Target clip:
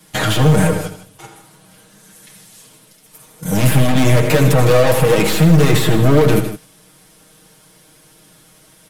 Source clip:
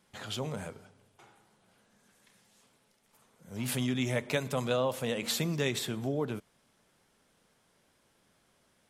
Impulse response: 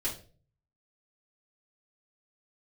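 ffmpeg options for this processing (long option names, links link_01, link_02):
-filter_complex "[0:a]aeval=exprs='(tanh(100*val(0)+0.25)-tanh(0.25))/100':channel_layout=same,equalizer=frequency=12000:width_type=o:width=0.82:gain=8,aecho=1:1:6.4:0.97,acrossover=split=200|460|2700[link_01][link_02][link_03][link_04];[link_02]acrusher=bits=6:mode=log:mix=0:aa=0.000001[link_05];[link_03]flanger=delay=8.6:depth=3.9:regen=59:speed=1.6:shape=sinusoidal[link_06];[link_04]acompressor=threshold=-55dB:ratio=6[link_07];[link_01][link_05][link_06][link_07]amix=inputs=4:normalize=0,agate=range=-11dB:threshold=-54dB:ratio=16:detection=peak,aecho=1:1:82|156:0.282|0.224,alimiter=level_in=30dB:limit=-1dB:release=50:level=0:latency=1,volume=-1dB"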